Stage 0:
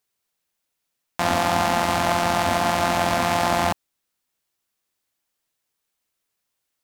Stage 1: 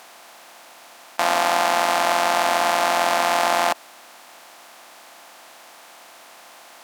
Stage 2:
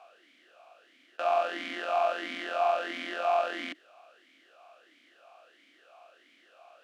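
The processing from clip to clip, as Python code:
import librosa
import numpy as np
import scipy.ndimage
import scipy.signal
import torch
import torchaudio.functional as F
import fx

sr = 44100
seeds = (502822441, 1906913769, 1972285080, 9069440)

y1 = fx.bin_compress(x, sr, power=0.4)
y1 = scipy.signal.sosfilt(scipy.signal.butter(2, 460.0, 'highpass', fs=sr, output='sos'), y1)
y2 = fx.tracing_dist(y1, sr, depth_ms=0.023)
y2 = fx.vowel_sweep(y2, sr, vowels='a-i', hz=1.5)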